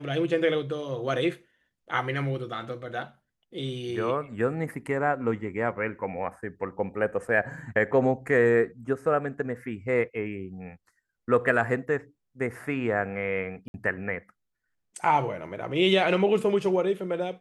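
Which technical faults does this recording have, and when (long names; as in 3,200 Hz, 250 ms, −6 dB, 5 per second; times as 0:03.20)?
0:13.68–0:13.74: drop-out 61 ms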